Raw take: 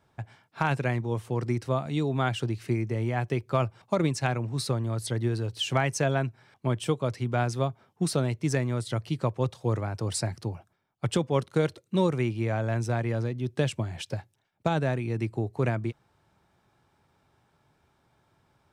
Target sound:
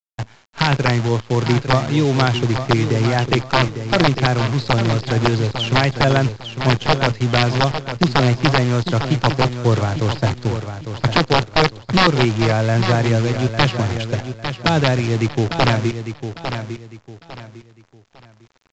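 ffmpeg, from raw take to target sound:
-filter_complex "[0:a]acrossover=split=460|3000[a][b][c];[b]acompressor=threshold=-28dB:ratio=2[d];[a][d][c]amix=inputs=3:normalize=0,acrossover=split=2300[e][f];[f]alimiter=level_in=6dB:limit=-24dB:level=0:latency=1:release=182,volume=-6dB[g];[e][g]amix=inputs=2:normalize=0,dynaudnorm=f=100:g=3:m=6dB,aresample=11025,aeval=exprs='(mod(3.55*val(0)+1,2)-1)/3.55':c=same,aresample=44100,acrusher=bits=6:dc=4:mix=0:aa=0.000001,aecho=1:1:852|1704|2556:0.355|0.103|0.0298,volume=5dB" -ar 16000 -c:a pcm_mulaw

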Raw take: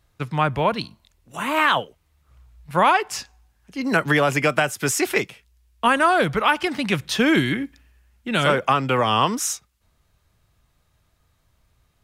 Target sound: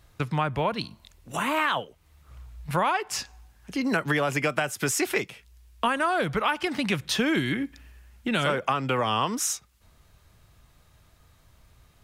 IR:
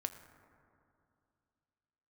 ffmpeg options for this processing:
-af "acompressor=threshold=-35dB:ratio=2.5,volume=6.5dB"

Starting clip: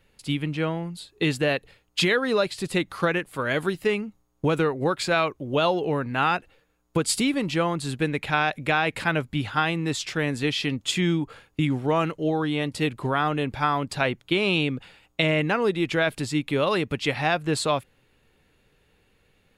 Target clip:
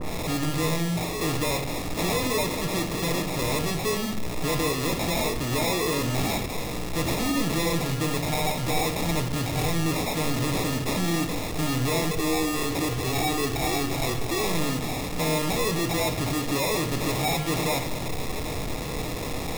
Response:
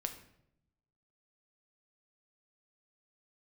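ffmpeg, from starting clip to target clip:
-filter_complex "[0:a]aeval=exprs='val(0)+0.5*0.0562*sgn(val(0))':c=same,asettb=1/sr,asplit=3[a][b][c];[a]atrim=end=12.114[d];[b]atrim=start=12.11:end=14.41,asetpts=PTS-STARTPTS,afade=t=in:d=0.004:c=qsin,afade=t=out:st=2.296:d=0.004:c=qsin,aecho=1:1:2.6:0.82,atrim=end_sample=101430[e];[c]atrim=start=14.406[f];[d][e]acrossfade=d=0.004:c1=hsin:c2=qsin[g];[g][f]acrossfade=d=0.004:c1=qsin:c2=hsin,acrusher=samples=29:mix=1:aa=0.000001,asoftclip=type=tanh:threshold=-24dB[h];[1:a]atrim=start_sample=2205[i];[h][i]afir=irnorm=-1:irlink=0,adynamicequalizer=threshold=0.00631:dfrequency=2200:dqfactor=0.7:tfrequency=2200:tqfactor=0.7:attack=5:release=100:ratio=0.375:range=3.5:mode=boostabove:tftype=highshelf"

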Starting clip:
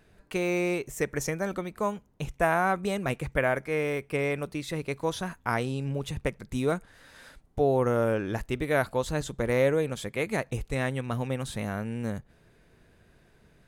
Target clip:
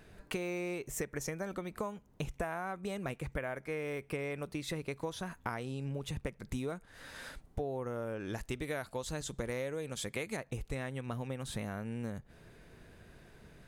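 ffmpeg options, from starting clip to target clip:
-filter_complex "[0:a]asettb=1/sr,asplit=3[a][b][c];[a]atrim=end=8.204[d];[b]atrim=start=8.2:end=10.37,asetpts=PTS-STARTPTS,afade=t=in:d=0.004:c=qsin,afade=t=out:st=2.166:d=0.004:c=qsin,equalizer=f=7k:t=o:w=2.3:g=7[e];[c]atrim=start=10.366[f];[d][e]acrossfade=d=0.004:c1=hsin:c2=qsin[g];[g][f]acrossfade=d=0.004:c1=qsin:c2=hsin,acompressor=threshold=-38dB:ratio=10,volume=3.5dB"

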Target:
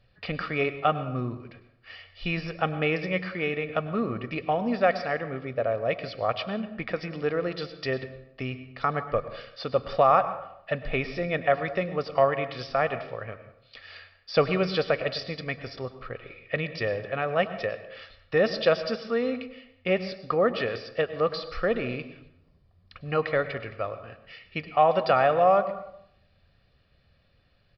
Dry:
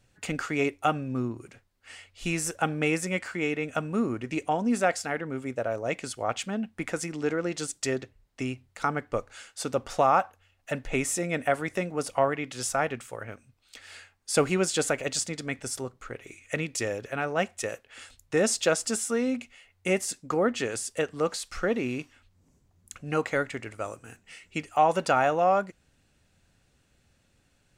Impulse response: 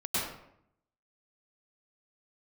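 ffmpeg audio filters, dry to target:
-filter_complex "[0:a]aresample=11025,aresample=44100,aecho=1:1:1.7:0.48,asplit=2[a][b];[1:a]atrim=start_sample=2205[c];[b][c]afir=irnorm=-1:irlink=0,volume=-19dB[d];[a][d]amix=inputs=2:normalize=0"

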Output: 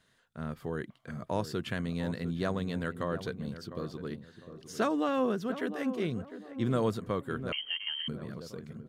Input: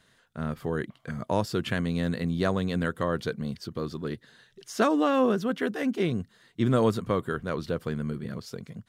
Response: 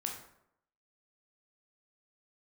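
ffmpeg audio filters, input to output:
-filter_complex "[0:a]asplit=2[a][b];[b]adelay=703,lowpass=f=1.1k:p=1,volume=-10.5dB,asplit=2[c][d];[d]adelay=703,lowpass=f=1.1k:p=1,volume=0.36,asplit=2[e][f];[f]adelay=703,lowpass=f=1.1k:p=1,volume=0.36,asplit=2[g][h];[h]adelay=703,lowpass=f=1.1k:p=1,volume=0.36[i];[a][c][e][g][i]amix=inputs=5:normalize=0,asettb=1/sr,asplit=3[j][k][l];[j]atrim=end=7.524[m];[k]atrim=start=7.52:end=8.08,asetpts=PTS-STARTPTS,afade=t=in:d=0.004:c=qsin,afade=t=out:st=0.556:d=0.004:c=qsin,lowpass=f=2.8k:t=q:w=0.5098,lowpass=f=2.8k:t=q:w=0.6013,lowpass=f=2.8k:t=q:w=0.9,lowpass=f=2.8k:t=q:w=2.563,afreqshift=-3300[n];[l]atrim=start=8.076[o];[m][n]acrossfade=d=0.004:c1=hsin:c2=qsin[p];[p][o]acrossfade=d=0.004:c1=qsin:c2=hsin,volume=-6dB"

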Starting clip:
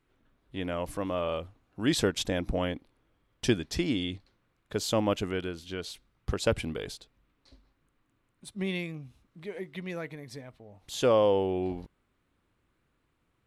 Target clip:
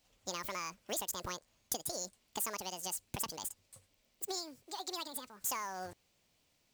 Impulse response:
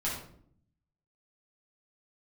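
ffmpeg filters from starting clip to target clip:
-af "tiltshelf=f=1.2k:g=-5.5,asetrate=88200,aresample=44100,acompressor=threshold=-37dB:ratio=10,highshelf=f=6.4k:g=5.5,acrusher=bits=4:mode=log:mix=0:aa=0.000001"

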